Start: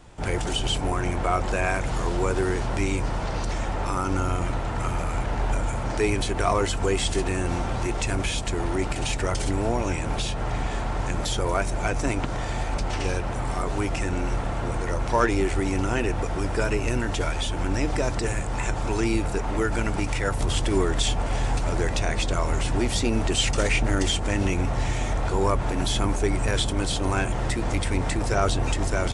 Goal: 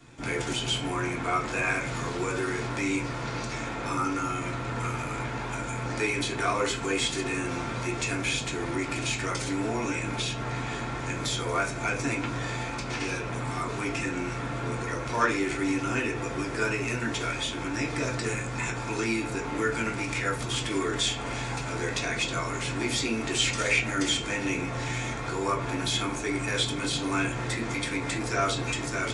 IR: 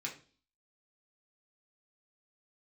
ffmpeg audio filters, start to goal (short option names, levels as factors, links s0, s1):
-filter_complex "[0:a]equalizer=f=770:w=6.6:g=-9.5,acrossover=split=530|1000[s0][s1][s2];[s0]alimiter=limit=0.0631:level=0:latency=1:release=53[s3];[s3][s1][s2]amix=inputs=3:normalize=0[s4];[1:a]atrim=start_sample=2205[s5];[s4][s5]afir=irnorm=-1:irlink=0"